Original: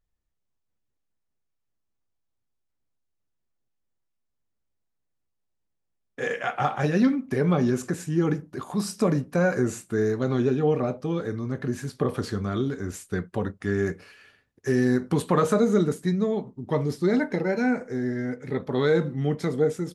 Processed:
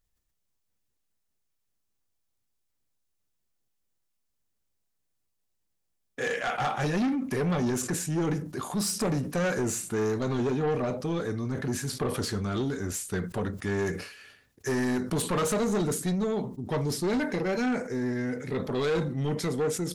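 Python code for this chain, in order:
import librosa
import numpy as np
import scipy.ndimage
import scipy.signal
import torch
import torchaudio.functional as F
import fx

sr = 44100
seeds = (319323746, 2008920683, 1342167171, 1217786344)

y = fx.high_shelf(x, sr, hz=3400.0, db=9.0)
y = 10.0 ** (-23.0 / 20.0) * np.tanh(y / 10.0 ** (-23.0 / 20.0))
y = fx.sustainer(y, sr, db_per_s=86.0)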